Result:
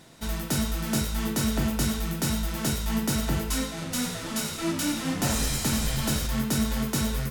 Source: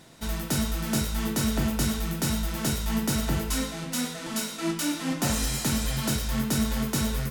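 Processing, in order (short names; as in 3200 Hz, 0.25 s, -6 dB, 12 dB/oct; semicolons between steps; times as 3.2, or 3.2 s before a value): 3.69–6.27 frequency-shifting echo 84 ms, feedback 52%, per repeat -68 Hz, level -8 dB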